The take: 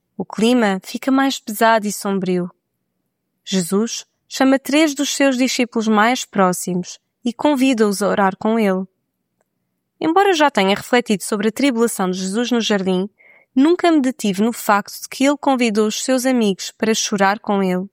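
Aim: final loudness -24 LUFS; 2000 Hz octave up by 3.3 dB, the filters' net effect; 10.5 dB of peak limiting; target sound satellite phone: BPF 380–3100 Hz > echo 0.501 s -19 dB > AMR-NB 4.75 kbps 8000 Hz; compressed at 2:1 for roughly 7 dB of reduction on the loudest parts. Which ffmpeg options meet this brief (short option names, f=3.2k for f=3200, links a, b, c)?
-af "equalizer=f=2k:t=o:g=5,acompressor=threshold=-21dB:ratio=2,alimiter=limit=-16dB:level=0:latency=1,highpass=380,lowpass=3.1k,aecho=1:1:501:0.112,volume=7.5dB" -ar 8000 -c:a libopencore_amrnb -b:a 4750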